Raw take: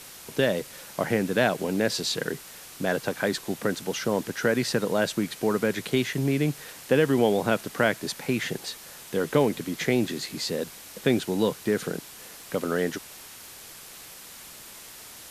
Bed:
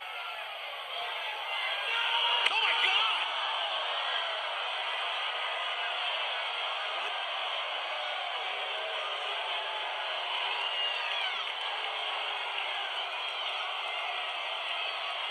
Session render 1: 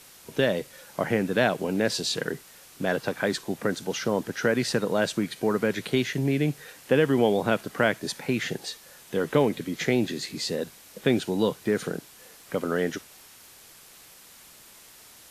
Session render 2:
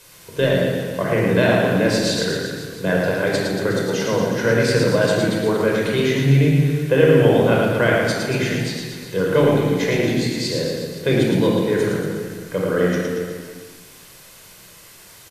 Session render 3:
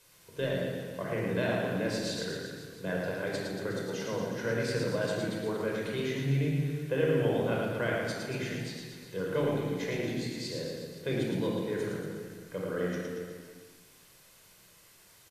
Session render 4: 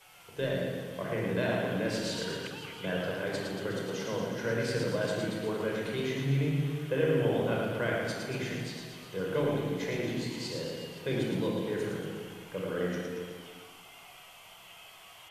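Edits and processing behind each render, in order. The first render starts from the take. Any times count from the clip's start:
noise print and reduce 6 dB
reverse bouncing-ball echo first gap 110 ms, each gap 1.1×, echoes 5; simulated room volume 2800 m³, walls furnished, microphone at 5.1 m
trim -14 dB
add bed -18.5 dB

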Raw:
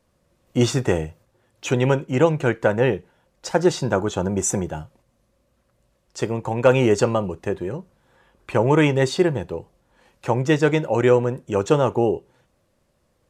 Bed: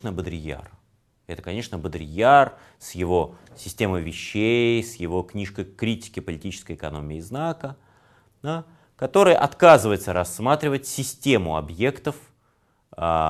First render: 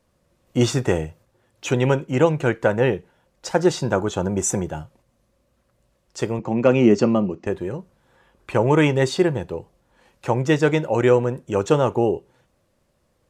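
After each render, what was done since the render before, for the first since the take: 6.39–7.47 s: cabinet simulation 120–5900 Hz, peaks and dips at 220 Hz +10 dB, 330 Hz +5 dB, 470 Hz -3 dB, 900 Hz -6 dB, 1.6 kHz -7 dB, 3.6 kHz -9 dB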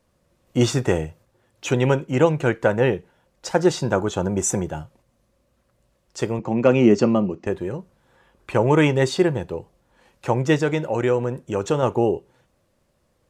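10.62–11.83 s: compression 1.5:1, threshold -22 dBFS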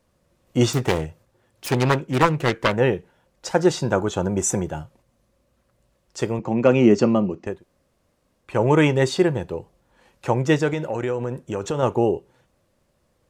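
0.73–2.77 s: self-modulated delay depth 0.68 ms; 7.52–8.51 s: room tone, crossfade 0.24 s; 10.73–11.79 s: compression 2.5:1, threshold -22 dBFS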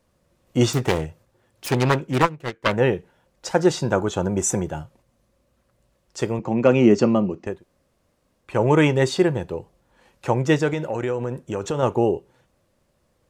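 2.22–2.66 s: upward expansion 2.5:1, over -24 dBFS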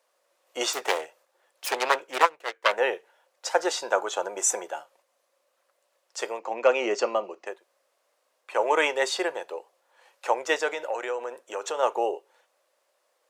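high-pass 530 Hz 24 dB/octave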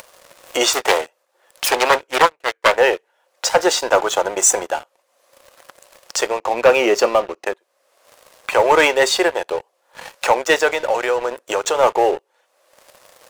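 upward compressor, threshold -27 dBFS; waveshaping leveller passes 3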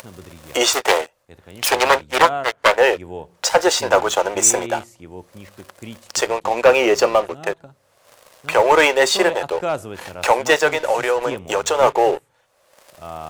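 add bed -11.5 dB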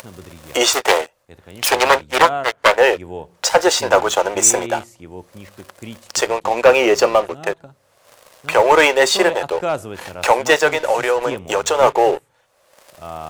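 trim +1.5 dB; peak limiter -2 dBFS, peak gain reduction 1 dB

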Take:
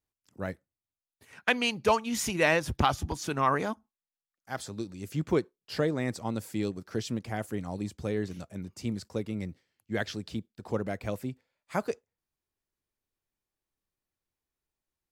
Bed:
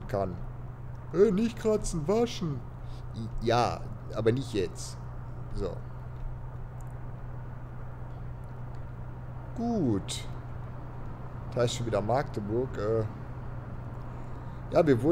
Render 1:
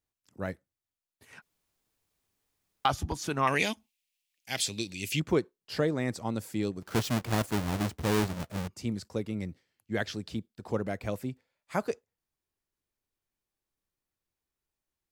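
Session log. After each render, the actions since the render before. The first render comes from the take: 1.42–2.85 s: room tone; 3.47–5.20 s: resonant high shelf 1.8 kHz +11.5 dB, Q 3; 6.82–8.68 s: square wave that keeps the level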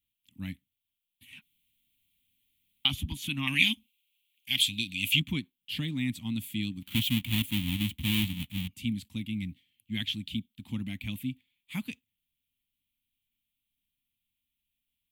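FFT filter 150 Hz 0 dB, 270 Hz +3 dB, 410 Hz -29 dB, 620 Hz -28 dB, 920 Hz -15 dB, 1.5 kHz -18 dB, 2.3 kHz +6 dB, 3.3 kHz +13 dB, 5.1 kHz -12 dB, 13 kHz +8 dB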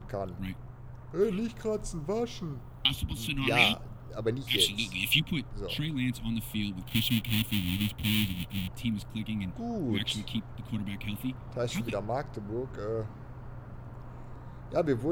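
add bed -5 dB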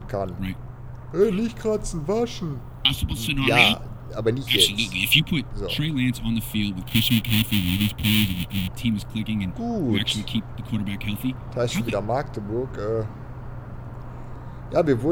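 trim +8 dB; peak limiter -2 dBFS, peak gain reduction 2 dB

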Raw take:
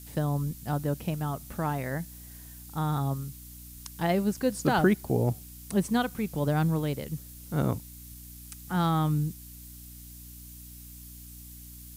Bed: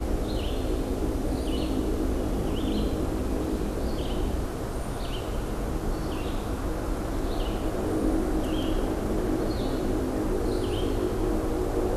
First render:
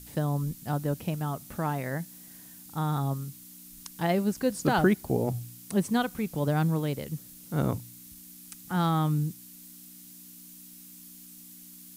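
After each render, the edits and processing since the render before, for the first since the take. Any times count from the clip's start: de-hum 60 Hz, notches 2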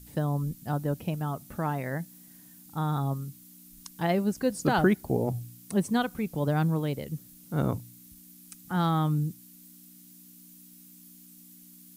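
noise reduction 6 dB, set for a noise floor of -49 dBFS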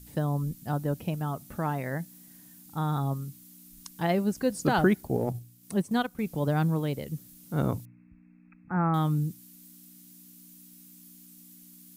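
4.95–6.19 s: transient shaper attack -2 dB, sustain -8 dB; 7.85–8.94 s: brick-wall FIR low-pass 2.7 kHz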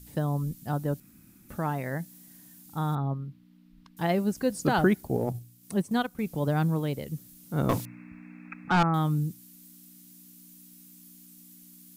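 1.00–1.49 s: room tone; 2.95–3.97 s: distance through air 380 m; 7.69–8.83 s: overdrive pedal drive 26 dB, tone 4.2 kHz, clips at -14.5 dBFS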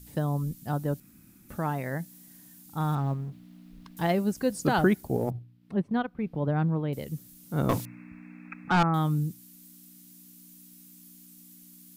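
2.80–4.12 s: companding laws mixed up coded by mu; 5.30–6.93 s: distance through air 390 m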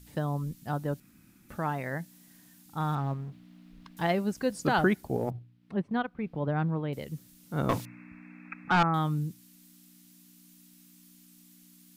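low-pass 3.4 kHz 6 dB/octave; tilt shelf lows -3.5 dB, about 840 Hz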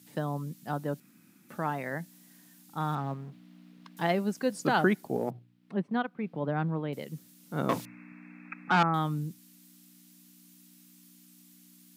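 high-pass 150 Hz 24 dB/octave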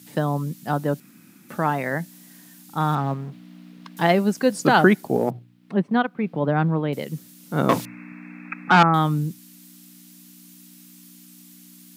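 trim +9.5 dB

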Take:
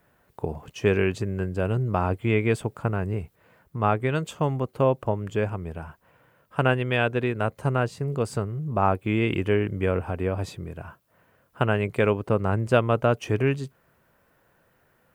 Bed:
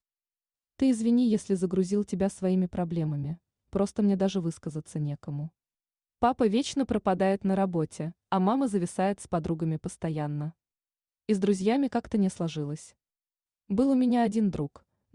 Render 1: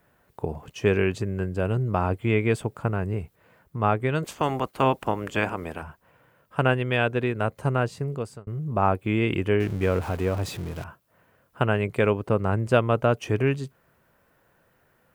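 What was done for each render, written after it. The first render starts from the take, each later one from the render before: 4.22–5.81 s: spectral peaks clipped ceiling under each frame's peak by 19 dB; 8.01–8.47 s: fade out linear; 9.60–10.84 s: jump at every zero crossing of -35 dBFS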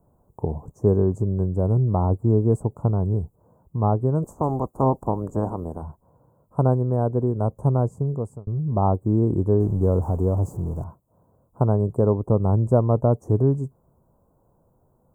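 elliptic band-stop 990–7300 Hz, stop band 60 dB; tilt EQ -2 dB/octave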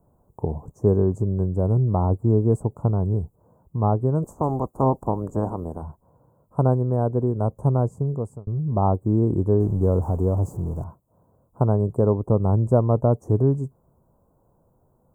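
no audible change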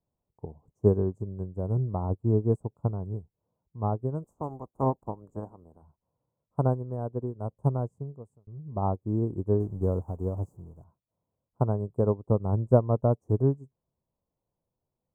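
upward expansion 2.5:1, over -29 dBFS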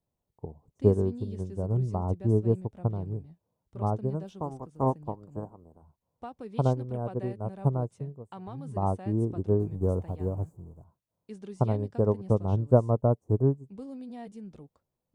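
add bed -17.5 dB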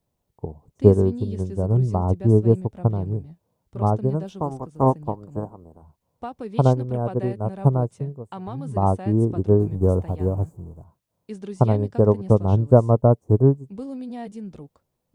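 trim +8 dB; peak limiter -1 dBFS, peak gain reduction 2.5 dB

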